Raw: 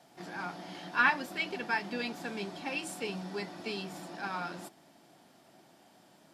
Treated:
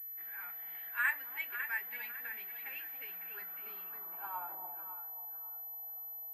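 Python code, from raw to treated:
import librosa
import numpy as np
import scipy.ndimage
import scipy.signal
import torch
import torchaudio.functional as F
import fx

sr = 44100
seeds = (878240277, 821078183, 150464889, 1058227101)

y = fx.filter_sweep_bandpass(x, sr, from_hz=1900.0, to_hz=810.0, start_s=2.97, end_s=4.69, q=4.7)
y = fx.echo_alternate(y, sr, ms=276, hz=810.0, feedback_pct=55, wet_db=-4.0)
y = fx.pwm(y, sr, carrier_hz=12000.0)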